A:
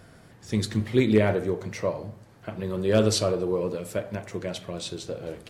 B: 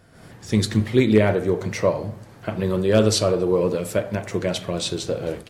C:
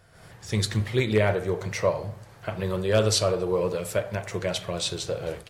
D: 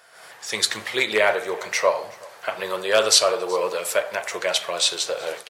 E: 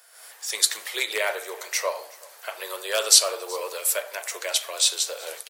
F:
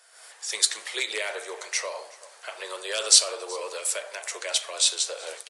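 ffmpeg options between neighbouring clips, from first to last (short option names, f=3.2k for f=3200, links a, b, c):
-af "dynaudnorm=f=120:g=3:m=12.5dB,volume=-4dB"
-af "equalizer=f=260:w=1.5:g=-12.5,volume=-1.5dB"
-af "highpass=700,aecho=1:1:374:0.0631,volume=9dB"
-af "highpass=f=370:w=0.5412,highpass=f=370:w=1.3066,aemphasis=mode=production:type=75fm,volume=-7.5dB"
-filter_complex "[0:a]acrossover=split=340|2100|5100[a][b][c][d];[b]alimiter=level_in=1.5dB:limit=-24dB:level=0:latency=1:release=65,volume=-1.5dB[e];[a][e][c][d]amix=inputs=4:normalize=0,aresample=22050,aresample=44100,volume=-1dB"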